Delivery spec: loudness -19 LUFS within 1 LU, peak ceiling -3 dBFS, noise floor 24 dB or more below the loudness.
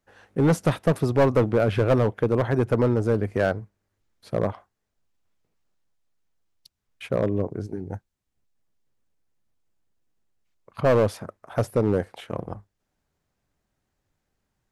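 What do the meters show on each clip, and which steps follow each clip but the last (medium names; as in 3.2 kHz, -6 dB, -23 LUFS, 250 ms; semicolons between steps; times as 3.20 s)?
clipped samples 0.8%; clipping level -13.5 dBFS; loudness -24.0 LUFS; peak level -13.5 dBFS; loudness target -19.0 LUFS
-> clip repair -13.5 dBFS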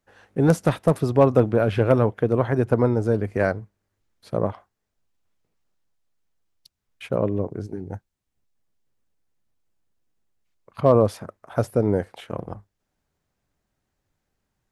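clipped samples 0.0%; loudness -22.0 LUFS; peak level -4.5 dBFS; loudness target -19.0 LUFS
-> trim +3 dB; peak limiter -3 dBFS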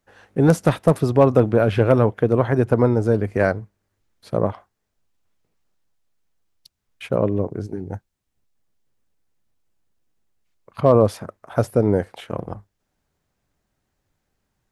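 loudness -19.5 LUFS; peak level -3.0 dBFS; noise floor -76 dBFS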